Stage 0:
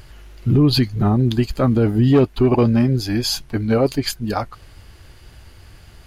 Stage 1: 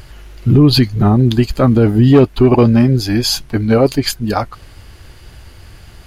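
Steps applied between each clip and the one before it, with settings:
background noise brown −56 dBFS
level +5.5 dB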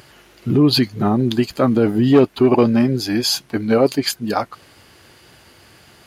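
high-pass filter 190 Hz 12 dB per octave
level −2.5 dB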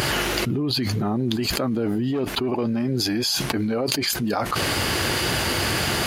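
envelope flattener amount 100%
level −15 dB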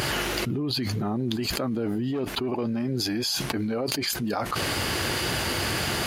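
wavefolder on the positive side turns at −10.5 dBFS
level −4 dB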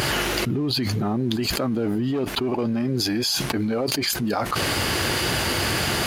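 leveller curve on the samples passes 1

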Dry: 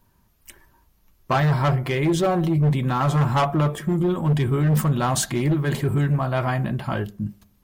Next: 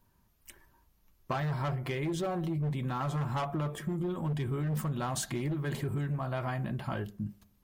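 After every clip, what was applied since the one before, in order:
downward compressor, threshold −23 dBFS, peak gain reduction 7 dB
level −7 dB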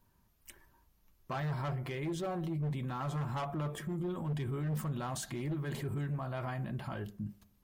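brickwall limiter −29 dBFS, peak gain reduction 6 dB
level −1.5 dB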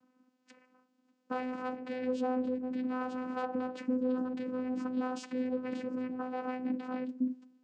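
channel vocoder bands 8, saw 254 Hz
level +2.5 dB

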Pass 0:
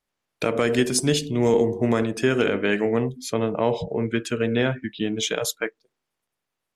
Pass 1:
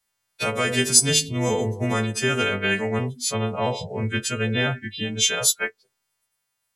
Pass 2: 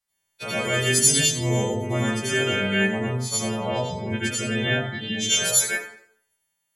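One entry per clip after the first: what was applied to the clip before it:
every partial snapped to a pitch grid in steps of 2 semitones; thirty-one-band graphic EQ 100 Hz +9 dB, 315 Hz −12 dB, 500 Hz −4 dB
convolution reverb RT60 0.60 s, pre-delay 72 ms, DRR −8.5 dB; level −9 dB

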